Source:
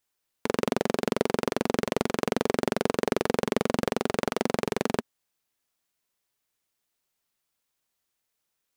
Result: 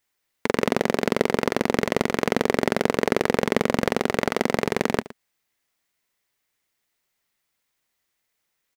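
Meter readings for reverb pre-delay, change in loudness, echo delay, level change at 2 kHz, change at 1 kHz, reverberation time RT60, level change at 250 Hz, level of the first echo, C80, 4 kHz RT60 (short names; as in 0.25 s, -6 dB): none, +4.5 dB, 0.116 s, +7.5 dB, +4.5 dB, none, +4.0 dB, -17.5 dB, none, none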